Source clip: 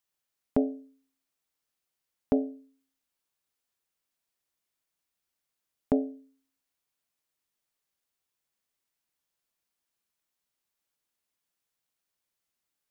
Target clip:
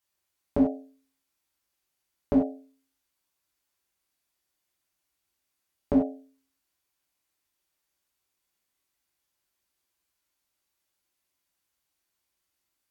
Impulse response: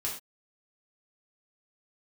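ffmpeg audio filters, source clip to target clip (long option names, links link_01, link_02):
-filter_complex "[1:a]atrim=start_sample=2205,atrim=end_sample=3969,asetrate=37485,aresample=44100[link_01];[0:a][link_01]afir=irnorm=-1:irlink=0"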